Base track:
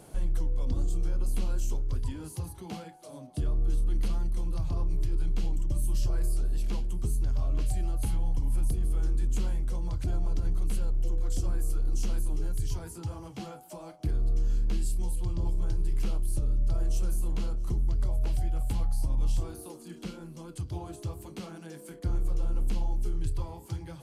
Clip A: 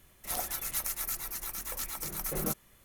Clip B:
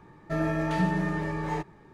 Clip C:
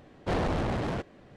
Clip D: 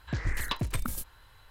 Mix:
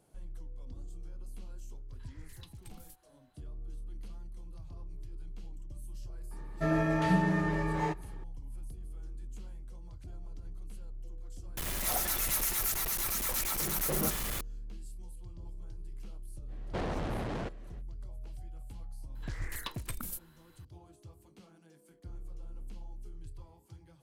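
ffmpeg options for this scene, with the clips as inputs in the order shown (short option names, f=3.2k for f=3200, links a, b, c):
-filter_complex "[4:a]asplit=2[a][b];[0:a]volume=-16.5dB[c];[a]acrossover=split=240|3000[d][e][f];[e]acompressor=threshold=-48dB:ratio=6:attack=3.2:release=140:knee=2.83:detection=peak[g];[d][g][f]amix=inputs=3:normalize=0[h];[1:a]aeval=exprs='val(0)+0.5*0.0398*sgn(val(0))':c=same[i];[3:a]acompressor=threshold=-33dB:ratio=2:attack=50:release=117:knee=1:detection=peak[j];[b]highshelf=f=9.1k:g=10.5[k];[h]atrim=end=1.5,asetpts=PTS-STARTPTS,volume=-17.5dB,afade=t=in:d=0.004:c=hsin,afade=t=out:st=1.496:d=0.004:c=hsin,adelay=1920[l];[2:a]atrim=end=1.93,asetpts=PTS-STARTPTS,volume=-1dB,afade=t=in:d=0.004:c=hsin,afade=t=out:st=1.926:d=0.004:c=hsin,adelay=6310[m];[i]atrim=end=2.84,asetpts=PTS-STARTPTS,volume=-2.5dB,afade=t=in:d=0.004:c=hsin,afade=t=out:st=2.836:d=0.004:c=hsin,adelay=11570[n];[j]atrim=end=1.36,asetpts=PTS-STARTPTS,volume=-4dB,afade=t=in:d=0.05,afade=t=out:st=1.31:d=0.05,adelay=16470[o];[k]atrim=end=1.5,asetpts=PTS-STARTPTS,volume=-8.5dB,afade=t=in:d=0.004:c=hsin,afade=t=out:st=1.496:d=0.004:c=hsin,adelay=19150[p];[c][l][m][n][o][p]amix=inputs=6:normalize=0"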